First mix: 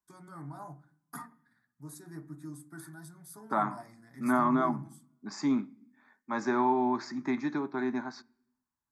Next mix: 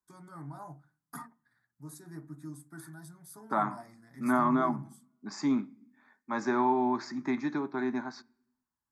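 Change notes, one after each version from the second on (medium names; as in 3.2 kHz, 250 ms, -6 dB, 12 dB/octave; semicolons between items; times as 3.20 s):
first voice: send -11.5 dB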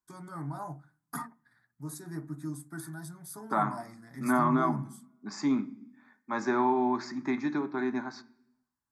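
first voice +6.0 dB; second voice: send +9.0 dB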